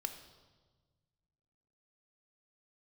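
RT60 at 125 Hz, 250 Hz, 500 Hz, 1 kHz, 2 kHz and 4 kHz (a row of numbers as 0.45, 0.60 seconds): 2.3, 1.9, 1.5, 1.3, 1.0, 1.2 seconds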